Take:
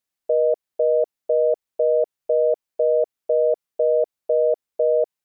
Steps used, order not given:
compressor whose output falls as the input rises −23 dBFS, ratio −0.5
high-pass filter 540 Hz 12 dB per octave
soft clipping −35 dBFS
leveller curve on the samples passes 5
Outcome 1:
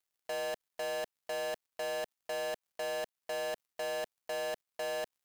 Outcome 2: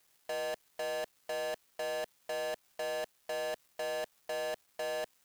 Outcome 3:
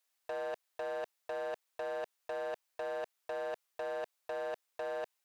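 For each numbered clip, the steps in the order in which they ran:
high-pass filter, then compressor whose output falls as the input rises, then soft clipping, then leveller curve on the samples
compressor whose output falls as the input rises, then high-pass filter, then soft clipping, then leveller curve on the samples
leveller curve on the samples, then compressor whose output falls as the input rises, then high-pass filter, then soft clipping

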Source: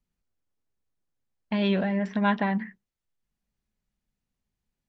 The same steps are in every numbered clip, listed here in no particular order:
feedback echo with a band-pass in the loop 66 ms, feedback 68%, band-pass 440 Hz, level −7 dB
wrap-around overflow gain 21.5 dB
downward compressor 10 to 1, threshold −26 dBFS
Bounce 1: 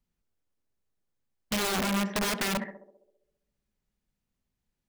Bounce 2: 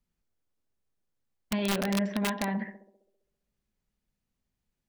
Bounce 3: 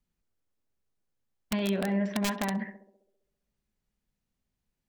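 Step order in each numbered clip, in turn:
wrap-around overflow, then downward compressor, then feedback echo with a band-pass in the loop
downward compressor, then feedback echo with a band-pass in the loop, then wrap-around overflow
downward compressor, then wrap-around overflow, then feedback echo with a band-pass in the loop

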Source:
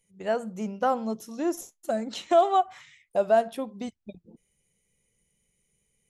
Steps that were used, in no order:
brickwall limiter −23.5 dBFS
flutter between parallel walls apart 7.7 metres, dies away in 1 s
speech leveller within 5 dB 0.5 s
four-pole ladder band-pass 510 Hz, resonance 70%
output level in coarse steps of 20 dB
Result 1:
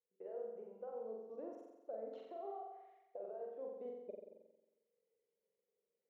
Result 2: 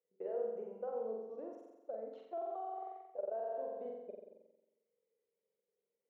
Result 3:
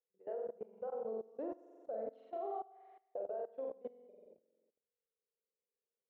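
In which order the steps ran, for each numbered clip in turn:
brickwall limiter, then output level in coarse steps, then four-pole ladder band-pass, then speech leveller, then flutter between parallel walls
output level in coarse steps, then flutter between parallel walls, then speech leveller, then brickwall limiter, then four-pole ladder band-pass
brickwall limiter, then four-pole ladder band-pass, then speech leveller, then flutter between parallel walls, then output level in coarse steps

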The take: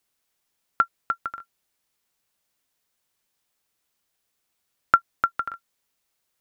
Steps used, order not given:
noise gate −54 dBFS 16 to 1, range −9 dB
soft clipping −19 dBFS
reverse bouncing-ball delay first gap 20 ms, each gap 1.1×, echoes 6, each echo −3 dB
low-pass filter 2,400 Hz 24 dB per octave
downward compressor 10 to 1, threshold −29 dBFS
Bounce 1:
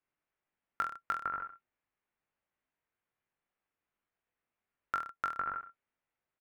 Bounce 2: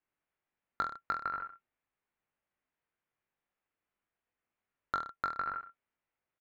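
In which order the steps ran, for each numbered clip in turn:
downward compressor, then soft clipping, then low-pass filter, then noise gate, then reverse bouncing-ball delay
downward compressor, then noise gate, then low-pass filter, then soft clipping, then reverse bouncing-ball delay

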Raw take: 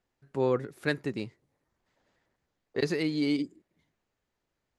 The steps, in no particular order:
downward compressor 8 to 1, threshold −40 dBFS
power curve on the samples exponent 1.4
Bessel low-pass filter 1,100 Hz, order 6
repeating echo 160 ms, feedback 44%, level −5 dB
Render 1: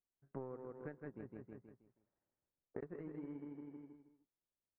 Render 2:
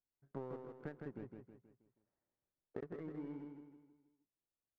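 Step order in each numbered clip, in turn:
repeating echo, then downward compressor, then power curve on the samples, then Bessel low-pass filter
downward compressor, then Bessel low-pass filter, then power curve on the samples, then repeating echo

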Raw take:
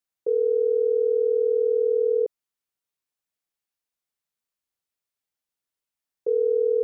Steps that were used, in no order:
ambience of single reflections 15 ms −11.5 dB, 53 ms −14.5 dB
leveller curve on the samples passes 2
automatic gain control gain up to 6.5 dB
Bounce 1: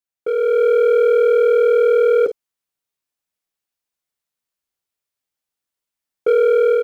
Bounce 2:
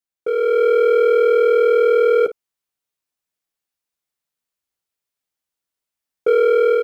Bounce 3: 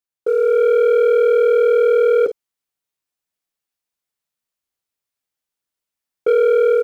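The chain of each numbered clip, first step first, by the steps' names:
ambience of single reflections, then leveller curve on the samples, then automatic gain control
leveller curve on the samples, then ambience of single reflections, then automatic gain control
ambience of single reflections, then automatic gain control, then leveller curve on the samples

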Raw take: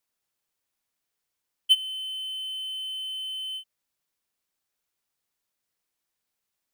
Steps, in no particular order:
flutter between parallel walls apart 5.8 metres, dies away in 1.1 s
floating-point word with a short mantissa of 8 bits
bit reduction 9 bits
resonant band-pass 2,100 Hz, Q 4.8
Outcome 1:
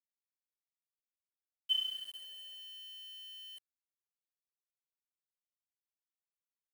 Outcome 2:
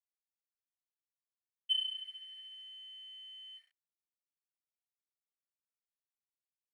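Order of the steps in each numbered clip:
resonant band-pass, then floating-point word with a short mantissa, then flutter between parallel walls, then bit reduction
flutter between parallel walls, then bit reduction, then floating-point word with a short mantissa, then resonant band-pass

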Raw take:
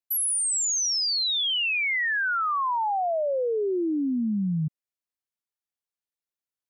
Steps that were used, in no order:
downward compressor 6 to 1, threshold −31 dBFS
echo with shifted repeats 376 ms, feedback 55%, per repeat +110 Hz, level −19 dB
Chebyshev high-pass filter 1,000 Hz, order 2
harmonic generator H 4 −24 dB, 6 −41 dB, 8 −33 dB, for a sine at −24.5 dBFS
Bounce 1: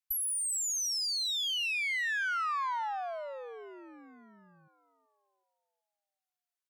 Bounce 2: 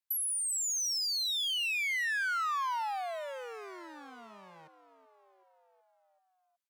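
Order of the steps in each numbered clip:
downward compressor, then Chebyshev high-pass filter, then harmonic generator, then echo with shifted repeats
harmonic generator, then downward compressor, then echo with shifted repeats, then Chebyshev high-pass filter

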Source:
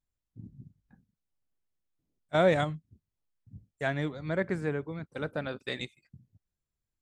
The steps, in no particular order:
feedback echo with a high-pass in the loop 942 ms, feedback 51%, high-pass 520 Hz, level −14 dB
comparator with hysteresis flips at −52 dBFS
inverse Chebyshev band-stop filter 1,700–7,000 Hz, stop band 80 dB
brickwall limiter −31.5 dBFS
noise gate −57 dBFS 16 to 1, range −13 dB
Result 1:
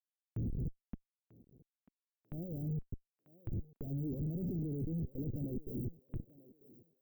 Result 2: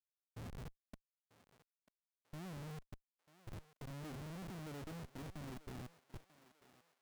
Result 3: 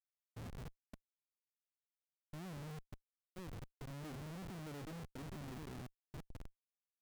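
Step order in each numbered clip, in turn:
comparator with hysteresis, then brickwall limiter, then inverse Chebyshev band-stop filter, then noise gate, then feedback echo with a high-pass in the loop
brickwall limiter, then inverse Chebyshev band-stop filter, then comparator with hysteresis, then noise gate, then feedback echo with a high-pass in the loop
feedback echo with a high-pass in the loop, then brickwall limiter, then inverse Chebyshev band-stop filter, then comparator with hysteresis, then noise gate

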